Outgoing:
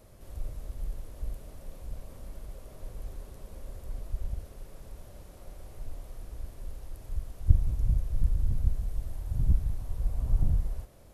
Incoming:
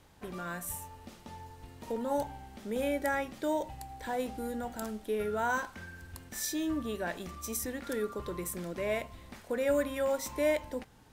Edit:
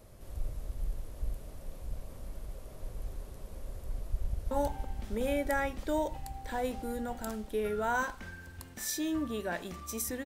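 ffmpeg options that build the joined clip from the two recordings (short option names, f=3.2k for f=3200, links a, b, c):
-filter_complex "[0:a]apad=whole_dur=10.25,atrim=end=10.25,atrim=end=4.512[a];[1:a]atrim=start=2.058:end=7.8[b];[a][b]acrossfade=d=0.004:c1=hsin:c2=hsin,asplit=2[c][d];[d]afade=t=in:st=4.13:d=0.01,afade=t=out:st=4.51:d=0.01,aecho=0:1:330|660|990|1320|1650|1980|2310|2640|2970|3300|3630|3960:0.668344|0.568092|0.482878|0.410447|0.34888|0.296548|0.252066|0.214256|0.182117|0.1548|0.13158|0.111843[e];[c][e]amix=inputs=2:normalize=0"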